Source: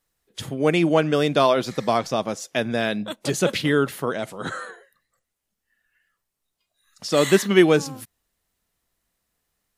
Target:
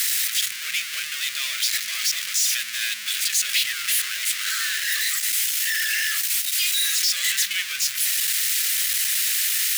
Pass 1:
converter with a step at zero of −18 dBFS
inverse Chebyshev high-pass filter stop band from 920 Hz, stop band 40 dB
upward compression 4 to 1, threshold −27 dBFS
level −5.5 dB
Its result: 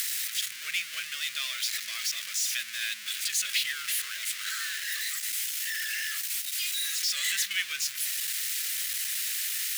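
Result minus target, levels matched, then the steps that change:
converter with a step at zero: distortion −5 dB
change: converter with a step at zero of −9 dBFS

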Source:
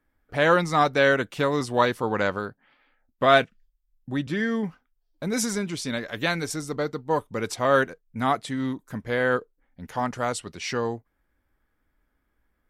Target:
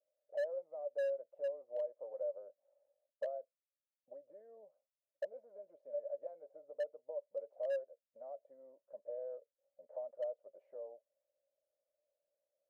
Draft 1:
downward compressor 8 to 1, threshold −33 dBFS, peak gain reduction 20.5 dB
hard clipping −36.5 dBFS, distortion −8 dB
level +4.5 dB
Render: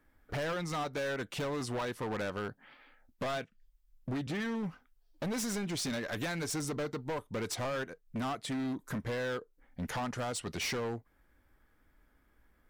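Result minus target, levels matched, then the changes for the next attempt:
500 Hz band −4.5 dB
add after downward compressor: flat-topped band-pass 580 Hz, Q 6.6

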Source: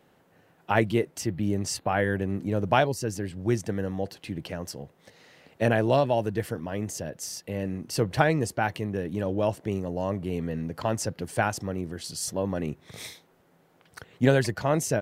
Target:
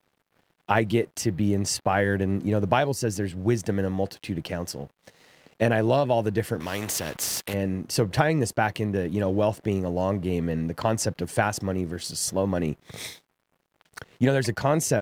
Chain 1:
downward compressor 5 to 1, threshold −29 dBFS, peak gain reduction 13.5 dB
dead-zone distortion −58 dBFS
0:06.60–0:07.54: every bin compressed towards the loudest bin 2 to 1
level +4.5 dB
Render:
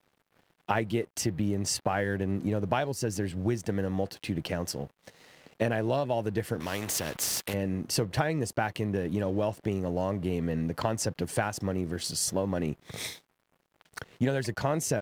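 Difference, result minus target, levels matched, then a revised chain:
downward compressor: peak gain reduction +6.5 dB
downward compressor 5 to 1, threshold −21 dBFS, peak gain reduction 7 dB
dead-zone distortion −58 dBFS
0:06.60–0:07.54: every bin compressed towards the loudest bin 2 to 1
level +4.5 dB

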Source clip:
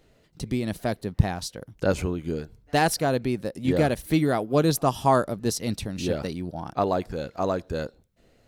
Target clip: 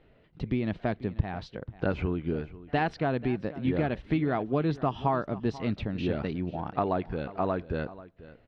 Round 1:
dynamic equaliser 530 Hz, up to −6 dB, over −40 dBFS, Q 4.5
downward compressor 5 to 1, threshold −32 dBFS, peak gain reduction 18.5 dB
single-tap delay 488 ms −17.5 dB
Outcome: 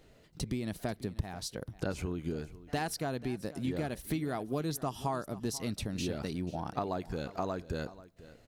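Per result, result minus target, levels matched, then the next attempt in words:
4,000 Hz band +8.5 dB; downward compressor: peak gain reduction +7 dB
dynamic equaliser 530 Hz, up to −6 dB, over −40 dBFS, Q 4.5
low-pass filter 3,100 Hz 24 dB per octave
downward compressor 5 to 1, threshold −32 dBFS, peak gain reduction 18.5 dB
single-tap delay 488 ms −17.5 dB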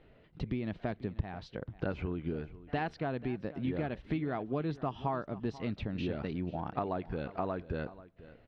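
downward compressor: peak gain reduction +7 dB
dynamic equaliser 530 Hz, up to −6 dB, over −40 dBFS, Q 4.5
low-pass filter 3,100 Hz 24 dB per octave
downward compressor 5 to 1, threshold −23 dBFS, peak gain reduction 11 dB
single-tap delay 488 ms −17.5 dB

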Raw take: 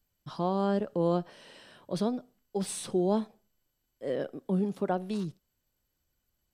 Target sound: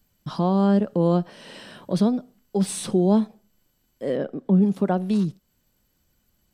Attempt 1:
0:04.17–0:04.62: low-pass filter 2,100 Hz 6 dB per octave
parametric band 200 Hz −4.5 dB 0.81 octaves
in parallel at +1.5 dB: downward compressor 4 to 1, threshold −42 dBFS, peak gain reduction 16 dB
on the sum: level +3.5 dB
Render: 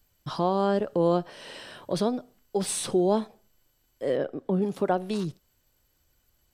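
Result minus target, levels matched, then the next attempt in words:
250 Hz band −3.5 dB
0:04.17–0:04.62: low-pass filter 2,100 Hz 6 dB per octave
parametric band 200 Hz +7 dB 0.81 octaves
in parallel at +1.5 dB: downward compressor 4 to 1, threshold −42 dBFS, peak gain reduction 19.5 dB
on the sum: level +3.5 dB

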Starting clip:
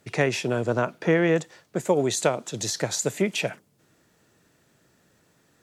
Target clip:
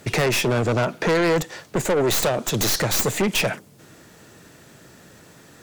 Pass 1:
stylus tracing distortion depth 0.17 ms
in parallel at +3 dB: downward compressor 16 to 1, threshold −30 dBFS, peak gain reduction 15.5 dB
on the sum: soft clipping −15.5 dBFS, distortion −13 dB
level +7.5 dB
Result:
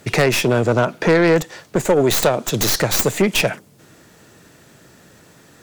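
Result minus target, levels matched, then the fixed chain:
soft clipping: distortion −7 dB
stylus tracing distortion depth 0.17 ms
in parallel at +3 dB: downward compressor 16 to 1, threshold −30 dBFS, peak gain reduction 15.5 dB
on the sum: soft clipping −24 dBFS, distortion −6 dB
level +7.5 dB

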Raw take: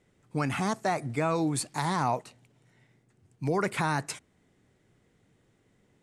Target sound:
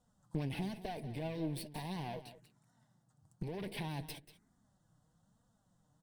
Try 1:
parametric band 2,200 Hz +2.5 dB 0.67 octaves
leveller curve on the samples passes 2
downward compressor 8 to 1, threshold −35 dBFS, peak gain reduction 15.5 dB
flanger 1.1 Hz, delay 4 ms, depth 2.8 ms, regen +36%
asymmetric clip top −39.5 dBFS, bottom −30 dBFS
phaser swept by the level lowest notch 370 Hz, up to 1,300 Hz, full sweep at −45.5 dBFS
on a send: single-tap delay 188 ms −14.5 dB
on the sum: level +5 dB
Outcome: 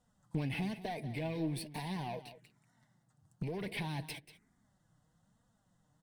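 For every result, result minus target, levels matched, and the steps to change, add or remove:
asymmetric clip: distortion −6 dB; 2,000 Hz band +3.0 dB
change: asymmetric clip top −50 dBFS, bottom −30 dBFS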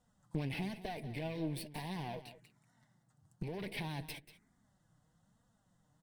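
2,000 Hz band +3.5 dB
change: parametric band 2,200 Hz −6.5 dB 0.67 octaves

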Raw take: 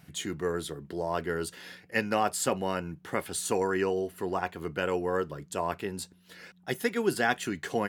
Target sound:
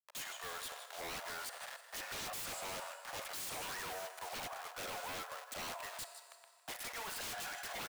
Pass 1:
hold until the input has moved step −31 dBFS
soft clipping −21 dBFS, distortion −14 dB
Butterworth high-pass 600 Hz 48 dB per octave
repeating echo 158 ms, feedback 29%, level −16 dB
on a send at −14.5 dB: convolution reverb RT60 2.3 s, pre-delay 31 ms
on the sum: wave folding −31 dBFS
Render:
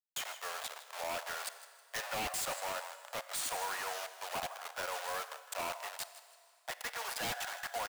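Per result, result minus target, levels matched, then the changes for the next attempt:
wave folding: distortion −11 dB; hold until the input has moved: distortion +7 dB
change: wave folding −38 dBFS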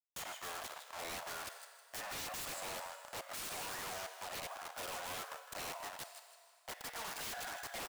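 hold until the input has moved: distortion +7 dB
change: hold until the input has moved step −38 dBFS

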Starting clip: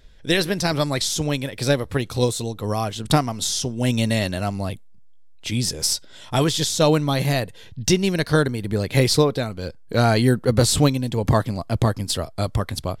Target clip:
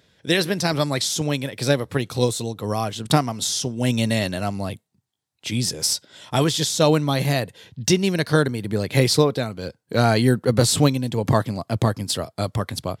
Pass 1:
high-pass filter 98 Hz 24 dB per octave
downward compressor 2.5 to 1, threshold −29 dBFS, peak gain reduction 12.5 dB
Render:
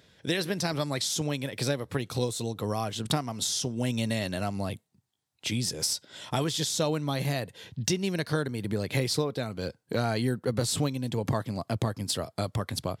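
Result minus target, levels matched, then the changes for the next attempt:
downward compressor: peak gain reduction +12.5 dB
remove: downward compressor 2.5 to 1, threshold −29 dBFS, peak gain reduction 12.5 dB

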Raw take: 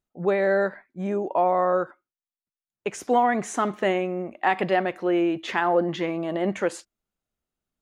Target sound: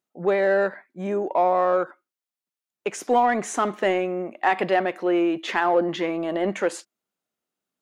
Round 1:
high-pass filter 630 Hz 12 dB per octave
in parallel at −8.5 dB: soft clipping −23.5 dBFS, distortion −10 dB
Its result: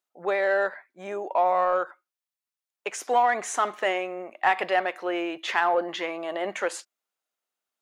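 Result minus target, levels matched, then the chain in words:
250 Hz band −7.5 dB
high-pass filter 220 Hz 12 dB per octave
in parallel at −8.5 dB: soft clipping −23.5 dBFS, distortion −9 dB

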